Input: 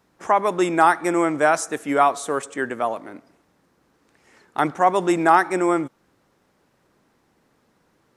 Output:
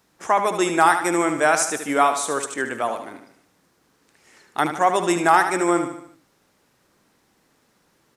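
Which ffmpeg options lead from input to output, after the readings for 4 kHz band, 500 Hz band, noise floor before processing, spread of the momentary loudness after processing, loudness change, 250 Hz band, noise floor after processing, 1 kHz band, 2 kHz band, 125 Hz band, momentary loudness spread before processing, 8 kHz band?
+5.0 dB, -1.0 dB, -65 dBFS, 10 LU, 0.0 dB, -1.0 dB, -64 dBFS, 0.0 dB, +2.0 dB, -1.5 dB, 10 LU, +7.0 dB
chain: -filter_complex "[0:a]highshelf=f=2400:g=9,asplit=2[s0][s1];[s1]aecho=0:1:75|150|225|300|375:0.376|0.18|0.0866|0.0416|0.02[s2];[s0][s2]amix=inputs=2:normalize=0,volume=0.794"

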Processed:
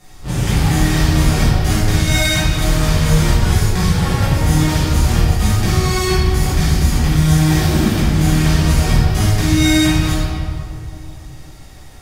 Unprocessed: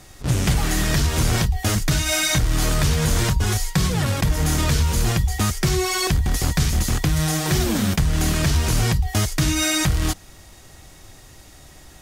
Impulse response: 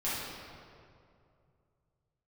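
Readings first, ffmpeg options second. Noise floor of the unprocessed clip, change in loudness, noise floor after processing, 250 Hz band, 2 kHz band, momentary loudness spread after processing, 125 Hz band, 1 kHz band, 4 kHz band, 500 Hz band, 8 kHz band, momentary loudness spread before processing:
-46 dBFS, +5.5 dB, -36 dBFS, +7.5 dB, +4.0 dB, 7 LU, +6.5 dB, +5.0 dB, +3.5 dB, +5.0 dB, 0.0 dB, 3 LU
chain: -filter_complex "[1:a]atrim=start_sample=2205[s0];[0:a][s0]afir=irnorm=-1:irlink=0,volume=0.708"

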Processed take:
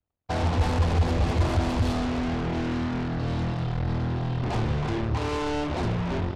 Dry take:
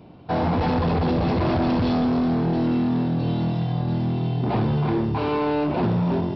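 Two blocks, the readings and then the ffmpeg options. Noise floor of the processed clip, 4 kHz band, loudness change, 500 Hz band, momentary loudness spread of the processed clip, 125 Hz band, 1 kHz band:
-34 dBFS, 0.0 dB, -4.0 dB, -5.5 dB, 4 LU, -2.0 dB, -4.5 dB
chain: -af "aeval=exprs='sgn(val(0))*max(abs(val(0))-0.00531,0)':c=same,aeval=exprs='0.141*(cos(1*acos(clip(val(0)/0.141,-1,1)))-cos(1*PI/2))+0.01*(cos(5*acos(clip(val(0)/0.141,-1,1)))-cos(5*PI/2))+0.0282*(cos(7*acos(clip(val(0)/0.141,-1,1)))-cos(7*PI/2))':c=same,lowshelf=f=110:t=q:w=1.5:g=9.5,volume=0.596"

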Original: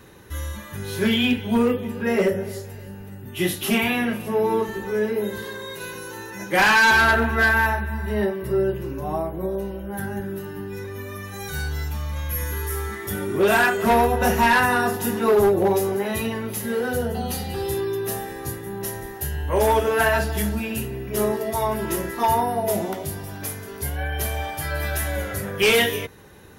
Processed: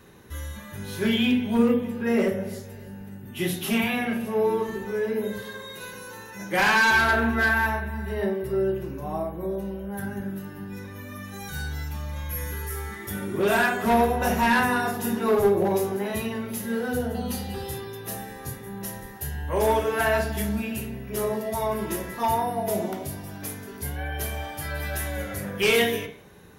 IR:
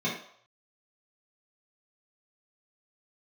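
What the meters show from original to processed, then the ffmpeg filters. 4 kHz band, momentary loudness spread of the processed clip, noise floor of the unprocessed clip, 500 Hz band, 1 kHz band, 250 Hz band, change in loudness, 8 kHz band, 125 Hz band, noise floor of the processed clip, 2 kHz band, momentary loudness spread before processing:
-4.0 dB, 16 LU, -37 dBFS, -3.5 dB, -4.0 dB, -1.0 dB, -3.5 dB, -4.5 dB, -4.0 dB, -41 dBFS, -4.0 dB, 15 LU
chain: -filter_complex "[0:a]asplit=2[s0][s1];[1:a]atrim=start_sample=2205,adelay=33[s2];[s1][s2]afir=irnorm=-1:irlink=0,volume=0.15[s3];[s0][s3]amix=inputs=2:normalize=0,volume=0.596"

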